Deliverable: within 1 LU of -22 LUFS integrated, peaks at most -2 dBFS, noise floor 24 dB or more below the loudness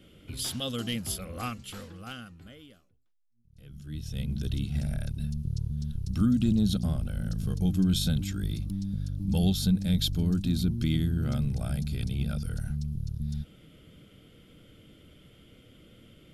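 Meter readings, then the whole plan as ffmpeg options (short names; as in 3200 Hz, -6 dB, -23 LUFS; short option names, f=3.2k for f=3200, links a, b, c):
loudness -30.0 LUFS; peak -15.5 dBFS; loudness target -22.0 LUFS
-> -af "volume=8dB"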